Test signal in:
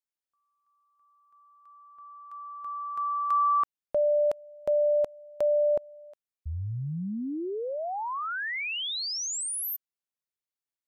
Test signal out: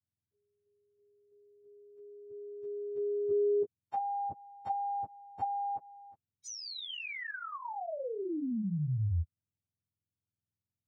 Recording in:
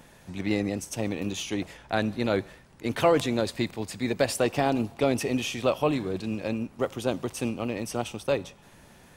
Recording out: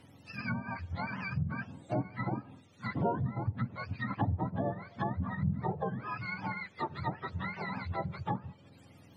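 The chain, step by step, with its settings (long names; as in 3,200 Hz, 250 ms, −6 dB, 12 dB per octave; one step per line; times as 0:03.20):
frequency axis turned over on the octave scale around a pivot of 690 Hz
treble cut that deepens with the level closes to 570 Hz, closed at −24 dBFS
level −3.5 dB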